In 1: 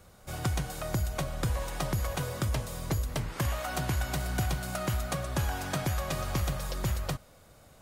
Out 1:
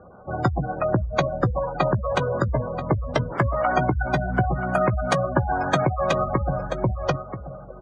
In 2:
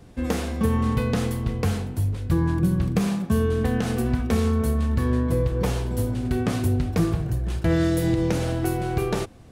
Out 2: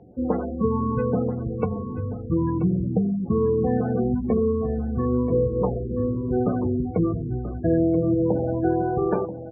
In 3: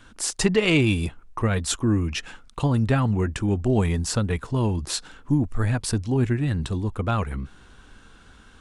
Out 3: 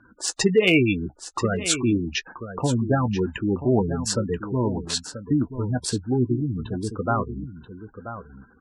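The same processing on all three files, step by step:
adaptive Wiener filter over 15 samples
gate on every frequency bin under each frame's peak −20 dB strong
low-pass that shuts in the quiet parts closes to 2,800 Hz, open at −19 dBFS
high-pass filter 300 Hz 6 dB per octave
high-shelf EQ 8,700 Hz +3.5 dB
gain into a clipping stage and back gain 13 dB
double-tracking delay 16 ms −13.5 dB
on a send: single-tap delay 983 ms −11.5 dB
on the sum: loudness normalisation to −24 LKFS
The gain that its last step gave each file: +15.5, +5.0, +4.5 decibels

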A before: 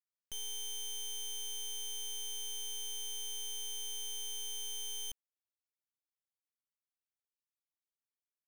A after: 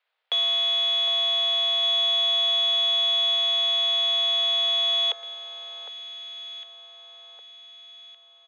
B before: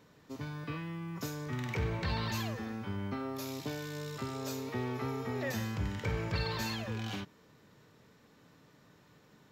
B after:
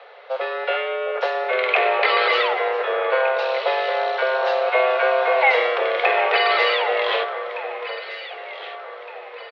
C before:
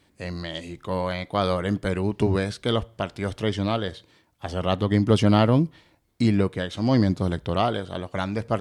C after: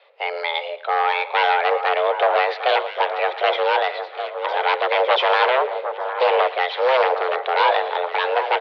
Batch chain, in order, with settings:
dynamic equaliser 1,900 Hz, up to +5 dB, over −51 dBFS, Q 3.5
wave folding −19 dBFS
repeating echo 114 ms, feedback 35%, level −17.5 dB
single-sideband voice off tune +260 Hz 210–3,500 Hz
delay that swaps between a low-pass and a high-pass 757 ms, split 1,600 Hz, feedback 62%, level −8.5 dB
loudness normalisation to −20 LKFS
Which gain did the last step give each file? +24.0, +19.0, +9.5 decibels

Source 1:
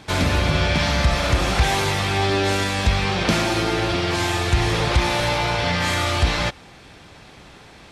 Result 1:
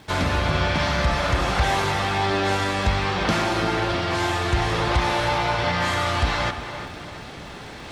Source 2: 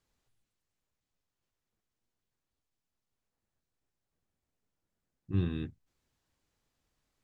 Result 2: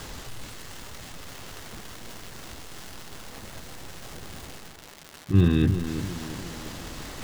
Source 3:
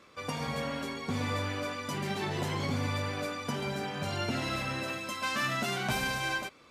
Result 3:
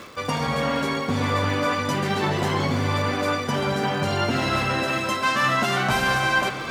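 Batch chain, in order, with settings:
reversed playback
upward compression, threshold −23 dBFS
reversed playback
surface crackle 370 per second −39 dBFS
high-shelf EQ 8,100 Hz −5.5 dB
notch filter 2,400 Hz, Q 22
on a send: tape delay 345 ms, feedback 59%, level −8 dB, low-pass 2,500 Hz
on the sum: dynamic equaliser 1,100 Hz, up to +5 dB, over −34 dBFS, Q 0.86
normalise the peak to −9 dBFS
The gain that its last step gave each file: −4.0, +10.0, +5.5 decibels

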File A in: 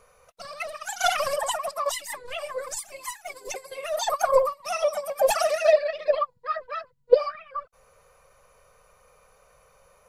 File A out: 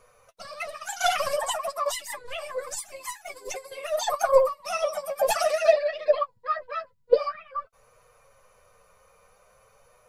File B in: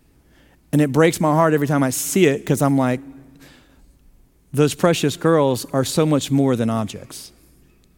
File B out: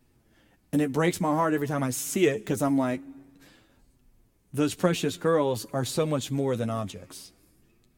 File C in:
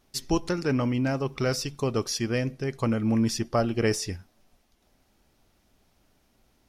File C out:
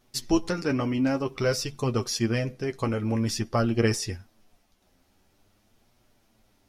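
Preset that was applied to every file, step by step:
flanger 0.5 Hz, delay 8 ms, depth 3.4 ms, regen +26%
loudness normalisation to −27 LKFS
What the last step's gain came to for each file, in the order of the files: +3.0, −4.5, +4.5 decibels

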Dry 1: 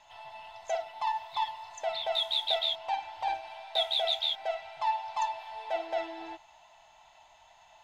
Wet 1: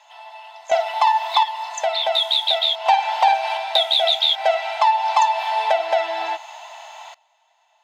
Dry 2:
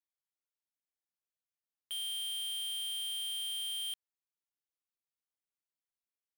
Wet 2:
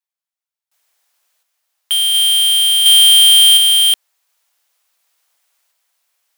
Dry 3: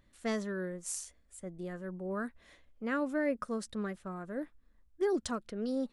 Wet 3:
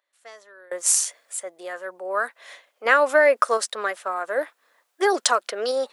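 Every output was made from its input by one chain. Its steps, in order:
high-pass filter 560 Hz 24 dB per octave
downward compressor 6 to 1, threshold −34 dBFS
sample-and-hold tremolo 1.4 Hz, depth 95%
normalise the peak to −3 dBFS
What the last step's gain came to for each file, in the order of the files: +22.0, +31.0, +22.0 decibels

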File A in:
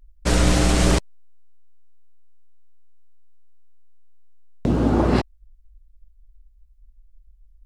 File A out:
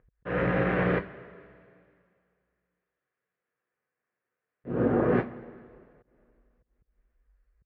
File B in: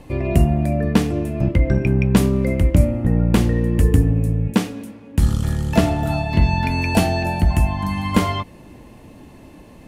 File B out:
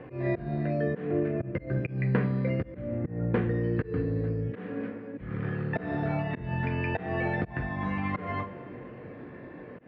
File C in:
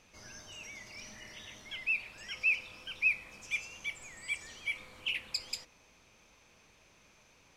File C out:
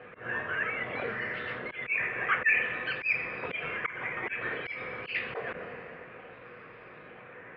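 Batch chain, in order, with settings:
sample-and-hold swept by an LFO 8×, swing 60% 0.56 Hz
downward compressor 2.5 to 1, threshold −25 dBFS
coupled-rooms reverb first 0.2 s, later 2.3 s, from −21 dB, DRR 4 dB
volume swells 174 ms
loudspeaker in its box 130–2,200 Hz, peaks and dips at 280 Hz −4 dB, 480 Hz +7 dB, 850 Hz −6 dB, 1,700 Hz +6 dB
normalise the peak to −12 dBFS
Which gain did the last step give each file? +1.5, −0.5, +14.5 decibels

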